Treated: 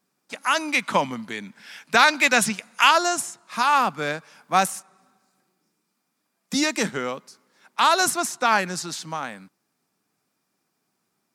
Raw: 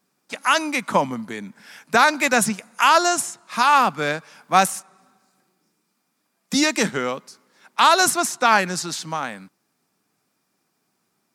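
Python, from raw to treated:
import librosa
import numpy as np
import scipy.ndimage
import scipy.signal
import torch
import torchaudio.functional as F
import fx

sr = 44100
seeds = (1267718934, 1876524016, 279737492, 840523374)

y = fx.peak_eq(x, sr, hz=3100.0, db=8.0, octaves=1.8, at=(0.68, 2.91))
y = y * librosa.db_to_amplitude(-3.5)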